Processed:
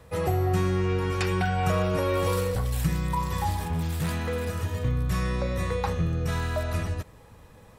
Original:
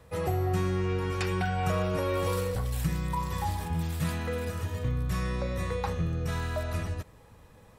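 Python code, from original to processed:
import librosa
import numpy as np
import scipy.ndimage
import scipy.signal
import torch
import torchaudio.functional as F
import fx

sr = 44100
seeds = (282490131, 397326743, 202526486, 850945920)

y = fx.clip_hard(x, sr, threshold_db=-27.0, at=(3.68, 4.49))
y = F.gain(torch.from_numpy(y), 3.5).numpy()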